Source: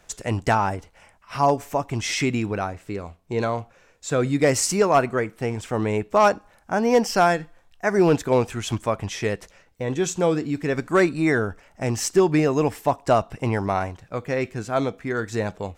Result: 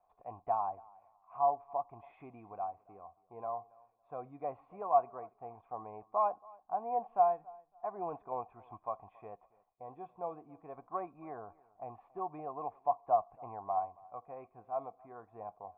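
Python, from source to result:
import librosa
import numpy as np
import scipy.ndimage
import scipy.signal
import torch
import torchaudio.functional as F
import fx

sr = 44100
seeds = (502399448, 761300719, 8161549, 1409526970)

p1 = fx.formant_cascade(x, sr, vowel='a')
p2 = p1 + fx.echo_feedback(p1, sr, ms=278, feedback_pct=24, wet_db=-24.0, dry=0)
y = p2 * 10.0 ** (-3.5 / 20.0)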